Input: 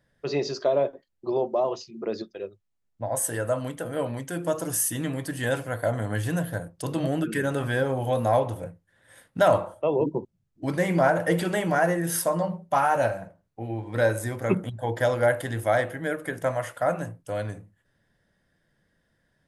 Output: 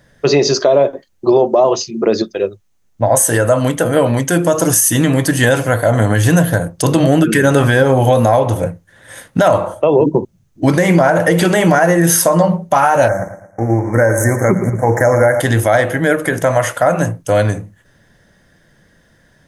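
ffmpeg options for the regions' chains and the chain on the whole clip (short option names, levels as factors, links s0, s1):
-filter_complex "[0:a]asettb=1/sr,asplit=3[s0][s1][s2];[s0]atrim=end=13.084[s3];[s1]atrim=start=13.08:end=15.4,asetpts=PTS-STARTPTS,afade=t=in:d=0.004:c=qsin,afade=t=out:st=2.316:d=0.004:c=qsin,aeval=exprs='sgn(val(0))*max(abs(val(0))-0.00299,0)':c=same,asuperstop=centerf=3500:order=20:qfactor=1.1,aecho=1:1:112|224|336|448:0.224|0.0873|0.0341|0.0133,atrim=end_sample=102312[s4];[s2]atrim=start=15.396[s5];[s3][s4]acrossfade=d=0.004:c1=hsin:c2=qsin[s6];[s6][s5]acrossfade=d=0.004:c1=qsin:c2=hsin,equalizer=f=6300:w=6.5:g=7.5,acompressor=threshold=0.0631:ratio=6,alimiter=level_in=8.91:limit=0.891:release=50:level=0:latency=1,volume=0.891"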